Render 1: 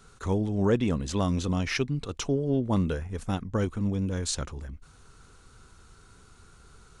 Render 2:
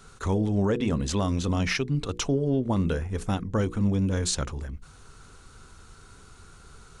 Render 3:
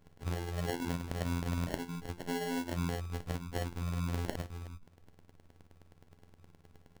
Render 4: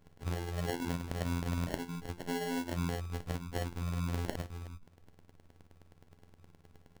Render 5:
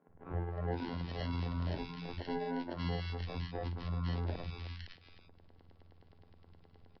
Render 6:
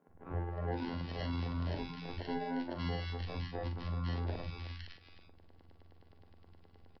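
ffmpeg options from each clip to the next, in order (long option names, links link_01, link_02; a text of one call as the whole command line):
ffmpeg -i in.wav -af "bandreject=frequency=60:width_type=h:width=6,bandreject=frequency=120:width_type=h:width=6,bandreject=frequency=180:width_type=h:width=6,bandreject=frequency=240:width_type=h:width=6,bandreject=frequency=300:width_type=h:width=6,bandreject=frequency=360:width_type=h:width=6,bandreject=frequency=420:width_type=h:width=6,bandreject=frequency=480:width_type=h:width=6,alimiter=limit=-21dB:level=0:latency=1:release=141,volume=4.5dB" out.wav
ffmpeg -i in.wav -af "afftfilt=real='hypot(re,im)*cos(PI*b)':imag='0':win_size=2048:overlap=0.75,acrusher=samples=36:mix=1:aa=0.000001,volume=-7dB" out.wav
ffmpeg -i in.wav -af anull out.wav
ffmpeg -i in.wav -filter_complex "[0:a]aresample=11025,volume=26dB,asoftclip=hard,volume=-26dB,aresample=44100,acrossover=split=190|1700[link_01][link_02][link_03];[link_01]adelay=80[link_04];[link_03]adelay=510[link_05];[link_04][link_02][link_05]amix=inputs=3:normalize=0" out.wav
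ffmpeg -i in.wav -filter_complex "[0:a]asplit=2[link_01][link_02];[link_02]adelay=43,volume=-9dB[link_03];[link_01][link_03]amix=inputs=2:normalize=0" out.wav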